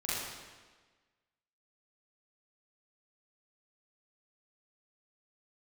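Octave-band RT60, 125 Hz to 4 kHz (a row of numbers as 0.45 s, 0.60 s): 1.3 s, 1.4 s, 1.4 s, 1.4 s, 1.3 s, 1.2 s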